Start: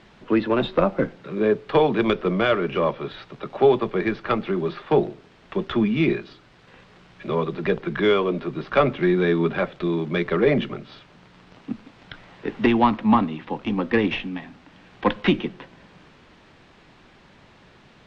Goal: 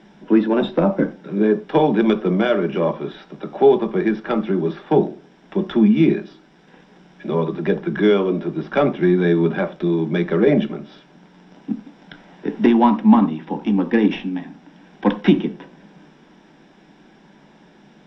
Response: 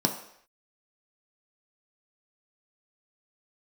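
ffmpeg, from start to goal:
-filter_complex "[0:a]asplit=2[a][b];[1:a]atrim=start_sample=2205,atrim=end_sample=4410[c];[b][c]afir=irnorm=-1:irlink=0,volume=-9.5dB[d];[a][d]amix=inputs=2:normalize=0,volume=-5dB"

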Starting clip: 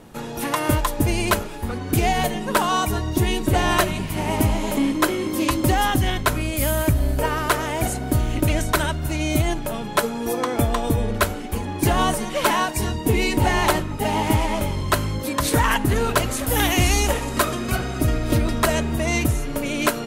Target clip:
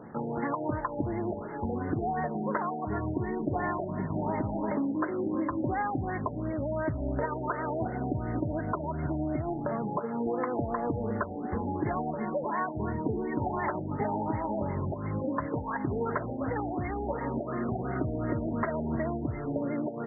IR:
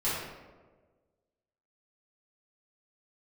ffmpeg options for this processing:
-filter_complex "[0:a]highpass=110,alimiter=limit=-12dB:level=0:latency=1:release=315,asplit=2[a][b];[1:a]atrim=start_sample=2205,afade=t=out:st=0.19:d=0.01,atrim=end_sample=8820[c];[b][c]afir=irnorm=-1:irlink=0,volume=-29.5dB[d];[a][d]amix=inputs=2:normalize=0,acompressor=threshold=-27dB:ratio=5,afftfilt=real='re*lt(b*sr/1024,860*pow(2200/860,0.5+0.5*sin(2*PI*2.8*pts/sr)))':imag='im*lt(b*sr/1024,860*pow(2200/860,0.5+0.5*sin(2*PI*2.8*pts/sr)))':win_size=1024:overlap=0.75"

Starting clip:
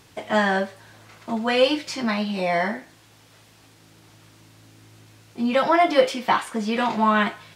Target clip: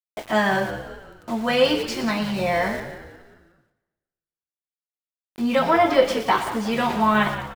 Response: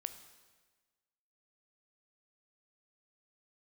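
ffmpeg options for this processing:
-filter_complex "[0:a]aeval=exprs='val(0)+0.00251*(sin(2*PI*50*n/s)+sin(2*PI*2*50*n/s)/2+sin(2*PI*3*50*n/s)/3+sin(2*PI*4*50*n/s)/4+sin(2*PI*5*50*n/s)/5)':c=same,aeval=exprs='val(0)*gte(abs(val(0)),0.0158)':c=same,asettb=1/sr,asplit=3[a][b][c];[a]atrim=end=5.594[d];[b]atrim=start=5.59:end=6.09,asetpts=PTS-STARTPTS,afade=t=in:d=0.004:c=qsin,afade=t=out:st=0.496:d=0.004:c=qsin,equalizer=f=10k:t=o:w=2.1:g=-4[e];[c]atrim=start=6.086[f];[d][e]acrossfade=d=0.004:c1=hsin:c2=qsin[g];[g][f]acrossfade=d=0.004:c1=qsin:c2=hsin,asplit=6[h][i][j][k][l][m];[i]adelay=180,afreqshift=-71,volume=-12.5dB[n];[j]adelay=360,afreqshift=-142,volume=-19.1dB[o];[k]adelay=540,afreqshift=-213,volume=-25.6dB[p];[l]adelay=720,afreqshift=-284,volume=-32.2dB[q];[m]adelay=900,afreqshift=-355,volume=-38.7dB[r];[h][n][o][p][q][r]amix=inputs=6:normalize=0,asplit=2[s][t];[1:a]atrim=start_sample=2205,adelay=117[u];[t][u]afir=irnorm=-1:irlink=0,volume=-9dB[v];[s][v]amix=inputs=2:normalize=0"

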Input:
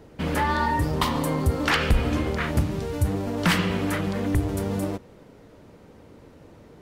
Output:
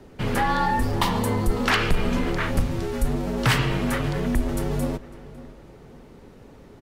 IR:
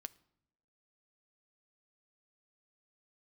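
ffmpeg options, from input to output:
-filter_complex "[0:a]acontrast=87,asplit=2[a][b];[b]adelay=552,lowpass=f=3.6k:p=1,volume=-18dB,asplit=2[c][d];[d]adelay=552,lowpass=f=3.6k:p=1,volume=0.38,asplit=2[e][f];[f]adelay=552,lowpass=f=3.6k:p=1,volume=0.38[g];[a][c][e][g]amix=inputs=4:normalize=0,afreqshift=-51,volume=-5.5dB"

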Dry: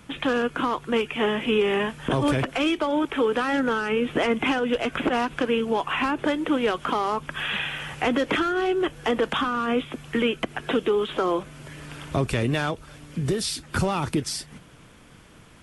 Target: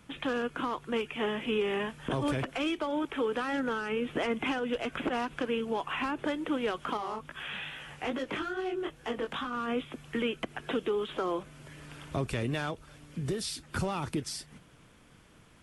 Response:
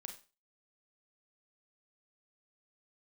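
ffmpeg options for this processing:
-filter_complex "[0:a]asettb=1/sr,asplit=3[a][b][c];[a]atrim=end=6.974[d];[b]atrim=start=6.97:end=9.53,asetpts=PTS-STARTPTS,afade=t=in:d=0.004:c=qsin,afade=t=out:st=2.556:d=0.004:c=qsin,flanger=delay=15.5:depth=7.1:speed=2.4[e];[c]atrim=start=9.526[f];[d][e]acrossfade=d=0.004:c1=hsin:c2=qsin[g];[g][f]acrossfade=d=0.004:c1=qsin:c2=hsin,volume=-8dB"

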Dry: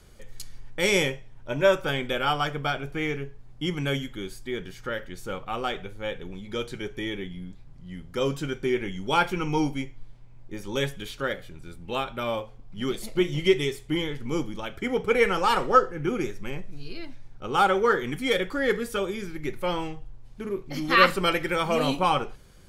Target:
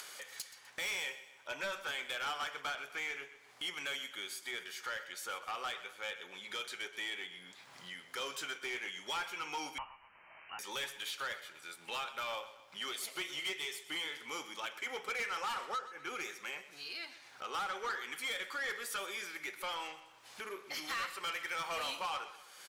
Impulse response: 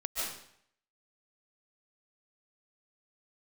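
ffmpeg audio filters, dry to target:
-filter_complex "[0:a]highpass=1.1k,acompressor=mode=upward:threshold=-42dB:ratio=2.5,alimiter=limit=-16dB:level=0:latency=1:release=493,acompressor=threshold=-38dB:ratio=2,asoftclip=type=tanh:threshold=-35.5dB,aecho=1:1:126|252|378|504:0.188|0.0885|0.0416|0.0196,asettb=1/sr,asplit=3[a][b][c];[a]atrim=end=9.784[d];[b]atrim=start=9.78:end=10.59,asetpts=PTS-STARTPTS,afade=t=in:d=0.004:c=qsin,afade=t=out:st=0.806:d=0.004:c=qsin,lowpass=f=2.7k:t=q:w=0.5098,lowpass=f=2.7k:t=q:w=0.6013,lowpass=f=2.7k:t=q:w=0.9,lowpass=f=2.7k:t=q:w=2.563,afreqshift=-3200[e];[c]atrim=start=10.586[f];[d][e]acrossfade=d=0.004:c1=hsin:c2=qsin[g];[g][f]acrossfade=d=0.004:c1=qsin:c2=hsin,volume=2.5dB"

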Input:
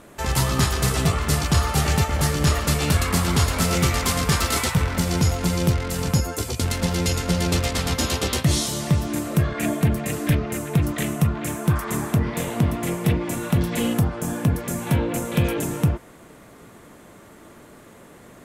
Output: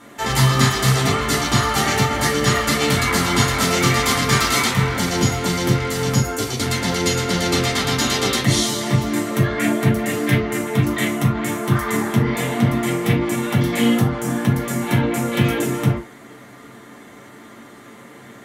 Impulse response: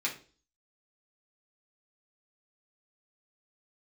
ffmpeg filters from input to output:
-filter_complex "[1:a]atrim=start_sample=2205,atrim=end_sample=3087,asetrate=38367,aresample=44100[a];[0:a][a]afir=irnorm=-1:irlink=0"

